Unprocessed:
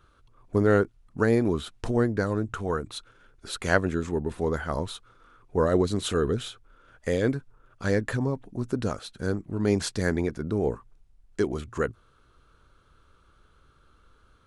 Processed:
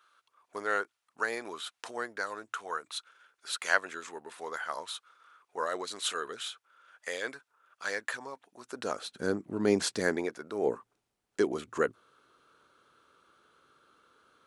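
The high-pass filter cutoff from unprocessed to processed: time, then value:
0:08.66 1,000 Hz
0:09.07 240 Hz
0:09.94 240 Hz
0:10.49 720 Hz
0:10.70 290 Hz

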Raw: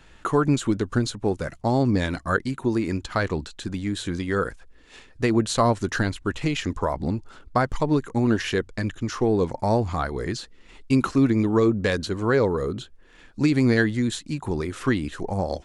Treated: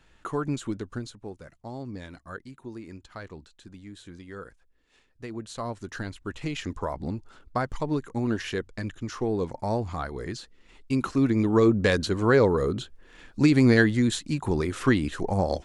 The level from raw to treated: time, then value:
0:00.72 −8.5 dB
0:01.37 −16.5 dB
0:05.27 −16.5 dB
0:06.61 −6 dB
0:10.93 −6 dB
0:11.76 +1 dB

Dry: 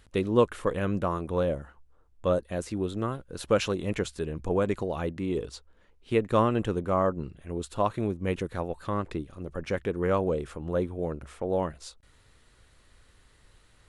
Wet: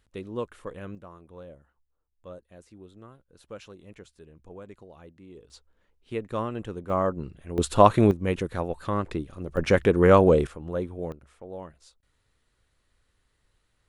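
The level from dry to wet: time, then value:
−10.5 dB
from 0:00.95 −18 dB
from 0:05.50 −7 dB
from 0:06.90 0 dB
from 0:07.58 +10.5 dB
from 0:08.11 +2.5 dB
from 0:09.57 +9.5 dB
from 0:10.47 −2 dB
from 0:11.12 −11.5 dB

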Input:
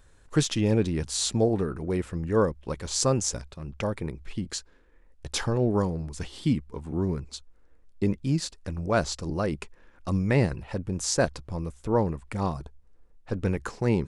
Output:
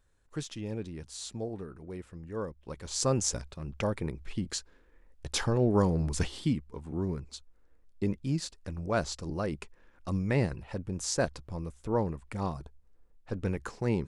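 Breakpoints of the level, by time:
0:02.38 −13.5 dB
0:03.26 −1.5 dB
0:05.70 −1.5 dB
0:06.17 +6.5 dB
0:06.52 −5 dB

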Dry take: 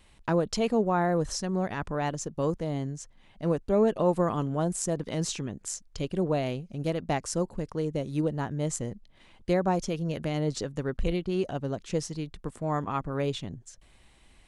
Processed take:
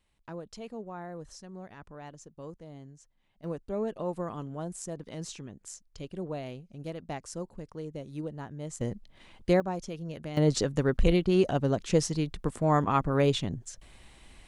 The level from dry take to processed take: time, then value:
−15.5 dB
from 0:03.44 −9 dB
from 0:08.81 +2 dB
from 0:09.60 −7.5 dB
from 0:10.37 +5 dB

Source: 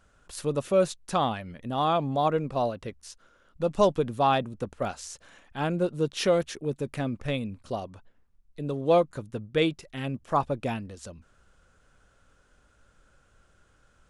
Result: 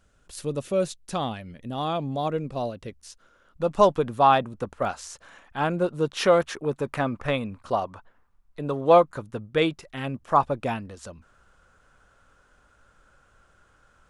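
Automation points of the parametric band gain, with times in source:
parametric band 1,100 Hz 1.7 octaves
0:02.74 −5 dB
0:03.80 +7 dB
0:05.98 +7 dB
0:06.57 +13.5 dB
0:08.63 +13.5 dB
0:09.42 +6.5 dB

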